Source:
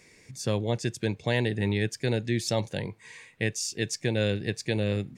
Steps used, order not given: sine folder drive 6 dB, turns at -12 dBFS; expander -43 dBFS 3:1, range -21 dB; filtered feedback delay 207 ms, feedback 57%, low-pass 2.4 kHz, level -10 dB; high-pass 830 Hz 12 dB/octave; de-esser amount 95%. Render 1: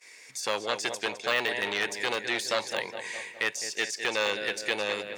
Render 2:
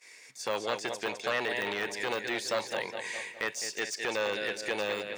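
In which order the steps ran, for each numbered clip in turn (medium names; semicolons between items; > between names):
filtered feedback delay > de-esser > sine folder > expander > high-pass; filtered feedback delay > sine folder > high-pass > de-esser > expander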